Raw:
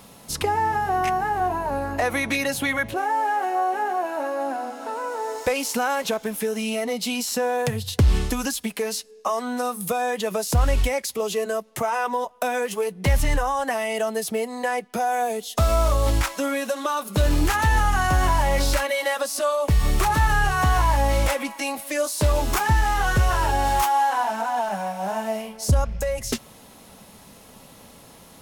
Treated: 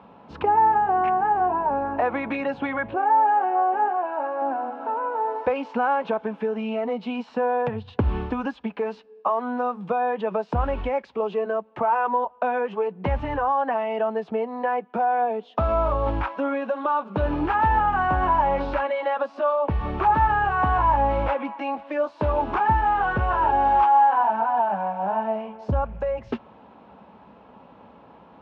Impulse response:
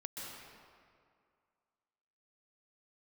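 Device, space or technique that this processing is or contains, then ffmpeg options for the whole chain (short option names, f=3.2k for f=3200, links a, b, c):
bass cabinet: -filter_complex "[0:a]asettb=1/sr,asplit=3[a][b][c];[a]atrim=end=3.884[d];[b]atrim=start=3.88:end=4.42,asetpts=PTS-STARTPTS,afade=t=in:d=0.004:c=qsin,afade=t=out:st=0.536:d=0.004:c=qsin,equalizer=f=65:w=0.31:g=-14[e];[c]atrim=start=4.416[f];[d][e]acrossfade=d=0.004:c1=hsin:c2=qsin[g];[g][f]acrossfade=d=0.004:c1=qsin:c2=hsin,highpass=f=63:w=0.5412,highpass=f=63:w=1.3066,equalizer=f=88:t=q:w=4:g=-10,equalizer=f=140:t=q:w=4:g=-9,equalizer=f=900:t=q:w=4:g=6,equalizer=f=2k:t=q:w=4:g=-10,lowpass=f=2.3k:w=0.5412,lowpass=f=2.3k:w=1.3066"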